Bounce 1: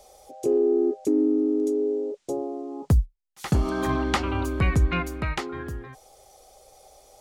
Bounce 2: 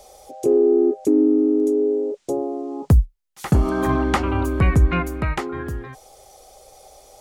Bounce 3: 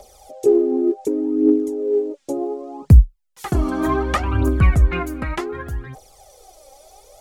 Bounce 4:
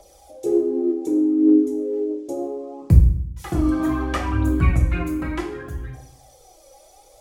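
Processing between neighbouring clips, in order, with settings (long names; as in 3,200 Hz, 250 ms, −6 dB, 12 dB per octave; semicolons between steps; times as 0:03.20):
dynamic equaliser 4,300 Hz, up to −8 dB, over −49 dBFS, Q 0.74; level +5.5 dB
phase shifter 0.67 Hz, delay 3.8 ms, feedback 63%; level −2.5 dB
convolution reverb RT60 0.65 s, pre-delay 3 ms, DRR 0.5 dB; level −6.5 dB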